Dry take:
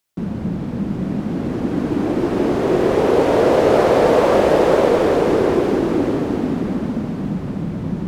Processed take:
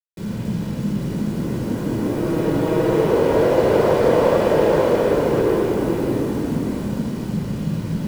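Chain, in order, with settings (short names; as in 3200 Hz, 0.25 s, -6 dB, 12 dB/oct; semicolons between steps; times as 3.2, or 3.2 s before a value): 2.16–3.01 comb 6.3 ms, depth 52%; bit-crush 6-bit; shoebox room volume 2000 m³, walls furnished, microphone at 4.8 m; gain -8.5 dB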